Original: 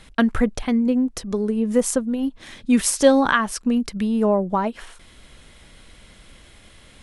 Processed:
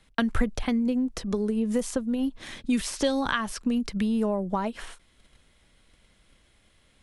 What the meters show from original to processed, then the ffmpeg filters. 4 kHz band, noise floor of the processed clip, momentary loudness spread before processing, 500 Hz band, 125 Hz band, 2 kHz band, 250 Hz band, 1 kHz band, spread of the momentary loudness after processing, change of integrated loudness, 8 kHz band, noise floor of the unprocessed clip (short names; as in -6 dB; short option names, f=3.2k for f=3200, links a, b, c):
-4.0 dB, -63 dBFS, 9 LU, -9.0 dB, -4.0 dB, -7.0 dB, -6.0 dB, -8.0 dB, 5 LU, -7.0 dB, -11.0 dB, -49 dBFS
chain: -filter_complex "[0:a]acrossover=split=4400[a][b];[b]acompressor=threshold=-37dB:ratio=4:attack=1:release=60[c];[a][c]amix=inputs=2:normalize=0,agate=range=-14dB:threshold=-42dB:ratio=16:detection=peak,acrossover=split=130|3000[d][e][f];[e]acompressor=threshold=-25dB:ratio=4[g];[d][g][f]amix=inputs=3:normalize=0"